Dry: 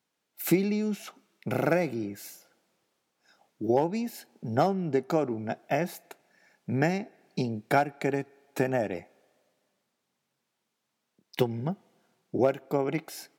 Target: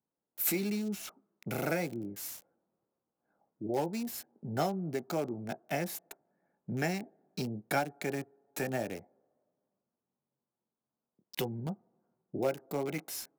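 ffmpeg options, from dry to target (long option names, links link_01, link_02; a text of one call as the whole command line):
ffmpeg -i in.wav -filter_complex "[0:a]aemphasis=mode=production:type=cd,acrossover=split=370|1200[link_01][link_02][link_03];[link_01]alimiter=level_in=1.5dB:limit=-24dB:level=0:latency=1:release=13,volume=-1.5dB[link_04];[link_02]flanger=delay=16.5:depth=3.9:speed=1[link_05];[link_03]acrusher=bits=6:mix=0:aa=0.000001[link_06];[link_04][link_05][link_06]amix=inputs=3:normalize=0,volume=-4.5dB" out.wav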